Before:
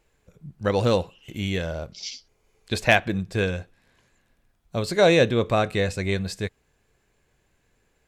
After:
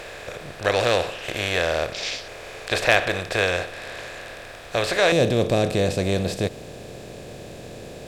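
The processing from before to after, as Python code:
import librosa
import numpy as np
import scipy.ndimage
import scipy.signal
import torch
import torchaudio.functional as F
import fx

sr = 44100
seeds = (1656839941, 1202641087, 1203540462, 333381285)

y = fx.bin_compress(x, sr, power=0.4)
y = fx.peak_eq(y, sr, hz=fx.steps((0.0, 190.0), (5.12, 1600.0)), db=-12.5, octaves=1.9)
y = F.gain(torch.from_numpy(y), -1.5).numpy()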